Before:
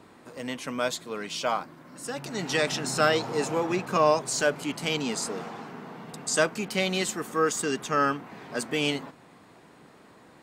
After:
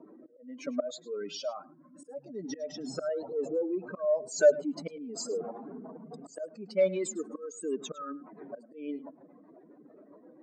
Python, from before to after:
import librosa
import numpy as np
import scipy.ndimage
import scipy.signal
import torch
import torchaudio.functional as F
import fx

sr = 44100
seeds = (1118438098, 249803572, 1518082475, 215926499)

y = fx.spec_expand(x, sr, power=2.8)
y = fx.peak_eq(y, sr, hz=450.0, db=-13.0, octaves=2.3, at=(1.36, 2.04))
y = fx.rider(y, sr, range_db=4, speed_s=2.0)
y = fx.auto_swell(y, sr, attack_ms=494.0)
y = fx.rotary_switch(y, sr, hz=0.9, then_hz=7.5, switch_at_s=3.94)
y = 10.0 ** (-19.0 / 20.0) * np.tanh(y / 10.0 ** (-19.0 / 20.0))
y = fx.cabinet(y, sr, low_hz=290.0, low_slope=12, high_hz=7200.0, hz=(300.0, 590.0, 860.0, 3000.0), db=(5, 10, -5, -9))
y = y + 10.0 ** (-19.0 / 20.0) * np.pad(y, (int(105 * sr / 1000.0), 0))[:len(y)]